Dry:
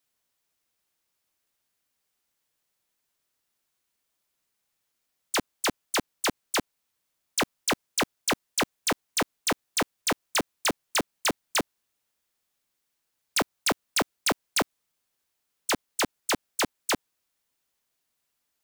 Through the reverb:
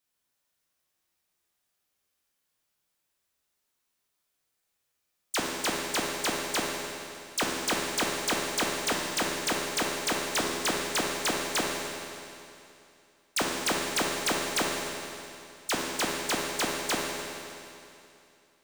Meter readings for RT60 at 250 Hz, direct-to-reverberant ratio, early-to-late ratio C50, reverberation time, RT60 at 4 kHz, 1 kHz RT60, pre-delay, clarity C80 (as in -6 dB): 2.7 s, -2.0 dB, 0.0 dB, 2.7 s, 2.7 s, 2.7 s, 12 ms, 1.0 dB